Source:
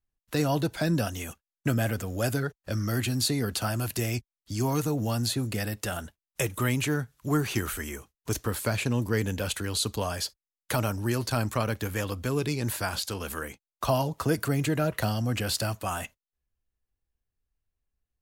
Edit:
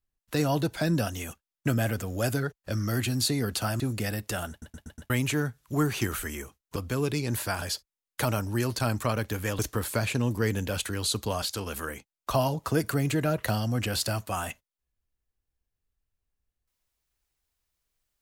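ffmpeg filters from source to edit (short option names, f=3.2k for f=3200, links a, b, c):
-filter_complex "[0:a]asplit=11[a][b][c][d][e][f][g][h][i][j][k];[a]atrim=end=3.802[l];[b]atrim=start=5.338:end=6.162[m];[c]atrim=start=6.038:end=6.162[n];[d]atrim=start=6.038:end=6.162[o];[e]atrim=start=6.038:end=6.162[p];[f]atrim=start=6.038:end=6.162[q];[g]atrim=start=6.638:end=8.302[r];[h]atrim=start=12.098:end=12.962[s];[i]atrim=start=10.128:end=12.102[t];[j]atrim=start=8.298:end=10.132[u];[k]atrim=start=12.958[v];[l][m]acrossfade=d=0.004:c1=hsin:c2=hsin[w];[w][n]acrossfade=d=0.004:c1=hsin:c2=hsin[x];[x][o]acrossfade=d=0.004:c1=hsin:c2=hsin[y];[y][p]acrossfade=d=0.004:c1=hsin:c2=hsin[z];[z][q]acrossfade=d=0.004:c1=hsin:c2=hsin[aa];[aa][r]acrossfade=d=0.004:c1=hsin:c2=hsin[ab];[ab][s]acrossfade=d=0.004:c1=hsin:c2=hsin[ac];[ac][t]acrossfade=d=0.004:c1=hsin:c2=hsin[ad];[ad][u]acrossfade=d=0.004:c1=hsin:c2=hsin[ae];[ae][v]acrossfade=d=0.004:c1=hsin:c2=hsin"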